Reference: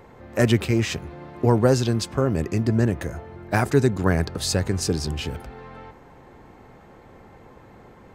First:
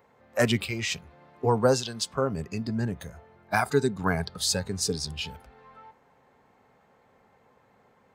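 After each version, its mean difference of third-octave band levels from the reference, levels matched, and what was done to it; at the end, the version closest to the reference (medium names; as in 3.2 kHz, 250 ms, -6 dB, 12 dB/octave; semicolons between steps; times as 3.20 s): 5.5 dB: spectral noise reduction 11 dB; high-pass 260 Hz 6 dB/octave; peaking EQ 330 Hz -15 dB 0.21 oct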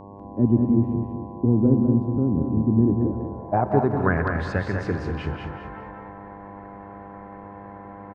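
9.5 dB: low-pass sweep 270 Hz -> 1.7 kHz, 2.74–4.21 s; mains buzz 100 Hz, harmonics 11, -39 dBFS -2 dB/octave; on a send: feedback delay 196 ms, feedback 29%, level -5 dB; on the sum: gated-style reverb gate 260 ms rising, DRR 8 dB; trim -3.5 dB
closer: first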